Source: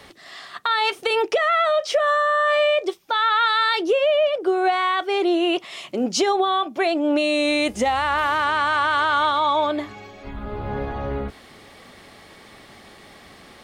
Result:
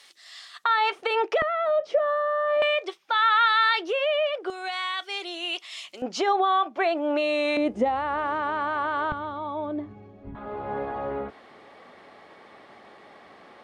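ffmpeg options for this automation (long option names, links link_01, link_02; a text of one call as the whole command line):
ffmpeg -i in.wav -af "asetnsamples=nb_out_samples=441:pad=0,asendcmd='0.64 bandpass f 1100;1.42 bandpass f 330;2.62 bandpass f 1800;4.5 bandpass f 5200;6.02 bandpass f 1100;7.57 bandpass f 350;9.12 bandpass f 140;10.35 bandpass f 760',bandpass=frequency=6400:width_type=q:width=0.68:csg=0" out.wav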